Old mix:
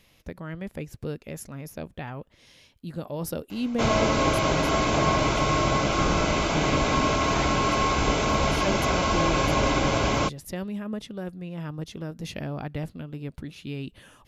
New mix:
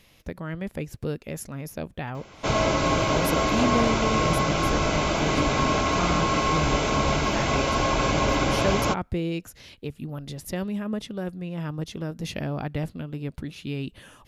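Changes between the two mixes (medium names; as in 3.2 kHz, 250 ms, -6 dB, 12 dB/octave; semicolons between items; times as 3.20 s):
speech +3.0 dB; background: entry -1.35 s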